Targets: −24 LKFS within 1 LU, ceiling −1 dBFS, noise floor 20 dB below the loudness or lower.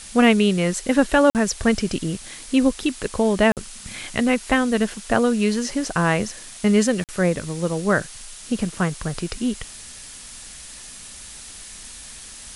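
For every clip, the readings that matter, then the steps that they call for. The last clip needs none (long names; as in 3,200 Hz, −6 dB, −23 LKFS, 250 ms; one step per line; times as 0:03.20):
number of dropouts 3; longest dropout 48 ms; background noise floor −40 dBFS; target noise floor −41 dBFS; integrated loudness −21.0 LKFS; sample peak −2.5 dBFS; target loudness −24.0 LKFS
→ repair the gap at 0:01.30/0:03.52/0:07.04, 48 ms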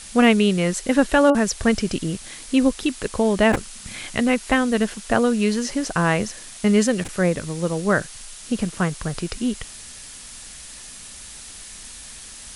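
number of dropouts 0; background noise floor −40 dBFS; target noise floor −41 dBFS
→ broadband denoise 6 dB, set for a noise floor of −40 dBFS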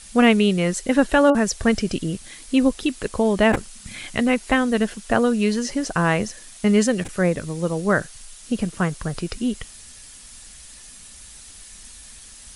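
background noise floor −43 dBFS; integrated loudness −21.0 LKFS; sample peak −2.5 dBFS; target loudness −24.0 LKFS
→ level −3 dB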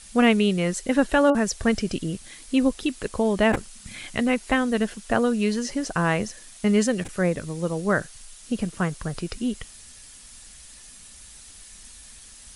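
integrated loudness −24.0 LKFS; sample peak −5.5 dBFS; background noise floor −46 dBFS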